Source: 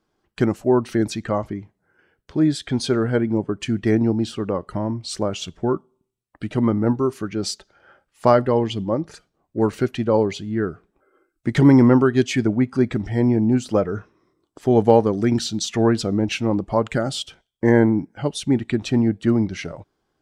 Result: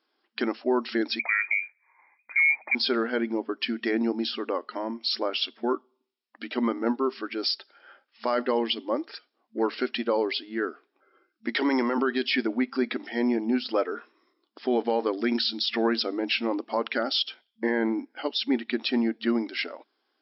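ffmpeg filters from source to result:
-filter_complex "[0:a]asettb=1/sr,asplit=3[s0][s1][s2];[s0]atrim=end=1.194[s3];[s1]atrim=start=1.19:end=2.75,asetpts=PTS-STARTPTS,afade=t=in:d=0.004:c=qsin,afade=t=out:st=1.556:d=0.004:c=qsin,lowpass=f=2100:t=q:w=0.5098,lowpass=f=2100:t=q:w=0.6013,lowpass=f=2100:t=q:w=0.9,lowpass=f=2100:t=q:w=2.563,afreqshift=-2500[s4];[s2]atrim=start=2.746[s5];[s3][s4]acrossfade=d=0.004:c1=hsin:c2=qsin[s6];[s6][s5]acrossfade=d=0.004:c1=qsin:c2=hsin,asettb=1/sr,asplit=3[s7][s8][s9];[s7]atrim=end=11.574[s10];[s8]atrim=start=11.57:end=11.98,asetpts=PTS-STARTPTS,afade=t=in:d=0.004:c=qsin,afade=t=out:st=0.406:d=0.004:c=qsin,highpass=360[s11];[s9]atrim=start=11.976[s12];[s10][s11]acrossfade=d=0.004:c1=hsin:c2=qsin[s13];[s13][s12]acrossfade=d=0.004:c1=qsin:c2=hsin,tiltshelf=f=1300:g=-6.5,alimiter=limit=0.188:level=0:latency=1:release=39,afftfilt=real='re*between(b*sr/4096,220,5500)':imag='im*between(b*sr/4096,220,5500)':win_size=4096:overlap=0.75"

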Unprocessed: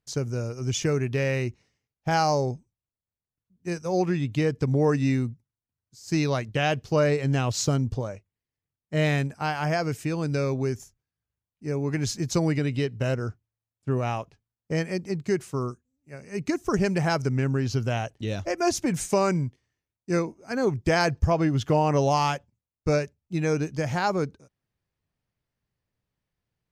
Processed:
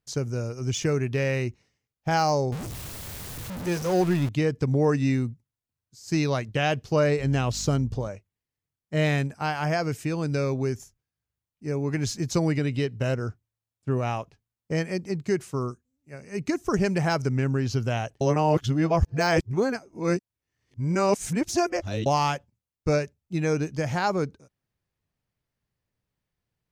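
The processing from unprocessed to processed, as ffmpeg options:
-filter_complex "[0:a]asettb=1/sr,asplit=3[s0][s1][s2];[s0]atrim=end=2.524[s3];[s1]atrim=start=2.52:end=4.29,asetpts=PTS-STARTPTS,afade=t=in:d=0.004:c=qsin,afade=t=out:st=1.766:d=0.004:c=qsin,aeval=exprs='val(0)+0.5*0.0398*sgn(val(0))':c=same[s4];[s2]atrim=start=4.286[s5];[s3][s4]acrossfade=d=0.004:c1=hsin:c2=qsin[s6];[s6][s5]acrossfade=d=0.004:c1=qsin:c2=hsin,asettb=1/sr,asplit=3[s7][s8][s9];[s7]atrim=end=7.194[s10];[s8]atrim=start=7.19:end=8.08,asetpts=PTS-STARTPTS,afade=t=in:d=0.004:c=qsin,afade=t=out:st=0.886:d=0.004:c=qsin,aeval=exprs='val(0)+0.01*(sin(2*PI*50*n/s)+sin(2*PI*2*50*n/s)/2+sin(2*PI*3*50*n/s)/3+sin(2*PI*4*50*n/s)/4+sin(2*PI*5*50*n/s)/5)':c=same[s11];[s9]atrim=start=8.076[s12];[s10][s11]acrossfade=d=0.004:c1=hsin:c2=qsin[s13];[s13][s12]acrossfade=d=0.004:c1=qsin:c2=hsin,asplit=3[s14][s15][s16];[s14]atrim=end=18.212[s17];[s15]atrim=start=18.208:end=22.062,asetpts=PTS-STARTPTS,areverse[s18];[s16]atrim=start=22.058[s19];[s17][s18]acrossfade=d=0.004:c1=hsin:c2=hsin[s20];[s20][s19]acrossfade=d=0.004:c1=hsin:c2=hsin,deesser=0.55"

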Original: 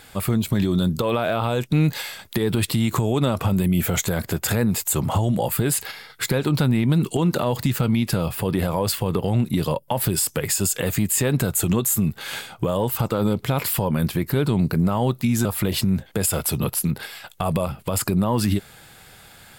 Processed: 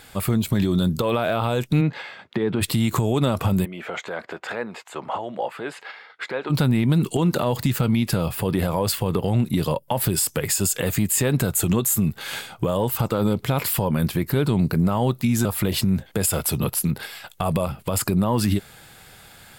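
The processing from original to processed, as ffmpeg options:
-filter_complex "[0:a]asplit=3[s0][s1][s2];[s0]afade=t=out:st=1.8:d=0.02[s3];[s1]highpass=150,lowpass=2300,afade=t=in:st=1.8:d=0.02,afade=t=out:st=2.6:d=0.02[s4];[s2]afade=t=in:st=2.6:d=0.02[s5];[s3][s4][s5]amix=inputs=3:normalize=0,asplit=3[s6][s7][s8];[s6]afade=t=out:st=3.64:d=0.02[s9];[s7]highpass=510,lowpass=2300,afade=t=in:st=3.64:d=0.02,afade=t=out:st=6.49:d=0.02[s10];[s8]afade=t=in:st=6.49:d=0.02[s11];[s9][s10][s11]amix=inputs=3:normalize=0"

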